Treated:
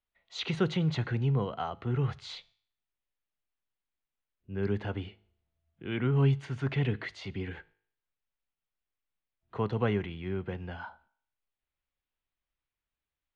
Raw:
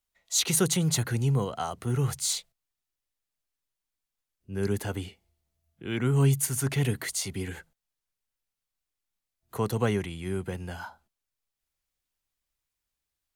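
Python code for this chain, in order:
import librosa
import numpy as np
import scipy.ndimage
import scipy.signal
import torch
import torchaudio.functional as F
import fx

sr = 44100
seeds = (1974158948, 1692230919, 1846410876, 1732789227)

y = scipy.signal.sosfilt(scipy.signal.butter(4, 3400.0, 'lowpass', fs=sr, output='sos'), x)
y = fx.comb_fb(y, sr, f0_hz=52.0, decay_s=0.57, harmonics='all', damping=0.0, mix_pct=30)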